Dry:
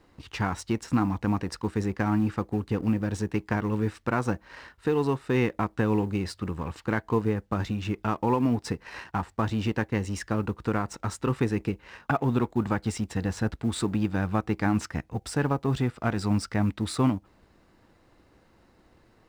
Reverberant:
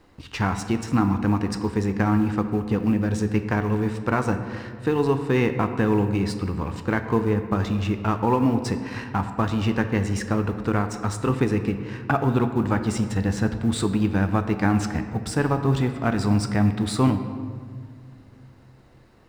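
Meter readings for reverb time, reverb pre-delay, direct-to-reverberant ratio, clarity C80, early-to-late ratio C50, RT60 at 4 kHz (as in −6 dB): 1.9 s, 10 ms, 7.5 dB, 10.5 dB, 9.0 dB, 1.1 s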